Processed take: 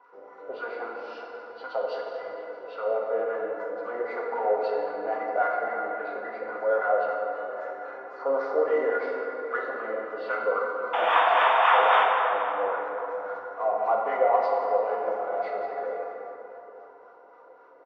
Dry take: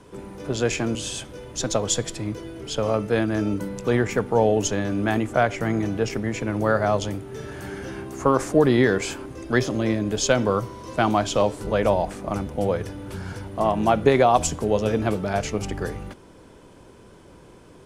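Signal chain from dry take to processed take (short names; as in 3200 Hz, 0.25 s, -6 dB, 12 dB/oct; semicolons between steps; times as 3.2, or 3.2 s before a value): nonlinear frequency compression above 2000 Hz 1.5:1; resonant low shelf 280 Hz -11 dB, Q 1.5; comb 4.1 ms, depth 47%; small resonant body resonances 1400/2000 Hz, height 15 dB, ringing for 45 ms; painted sound noise, 10.93–12.04, 620–3700 Hz -9 dBFS; in parallel at -3.5 dB: soft clip -21.5 dBFS, distortion -3 dB; on the sum: wah 3.7 Hz 560–1200 Hz, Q 3.4; delay with a stepping band-pass 0.159 s, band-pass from 390 Hz, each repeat 1.4 oct, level -11 dB; plate-style reverb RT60 3.6 s, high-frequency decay 0.45×, DRR -1.5 dB; gain -6.5 dB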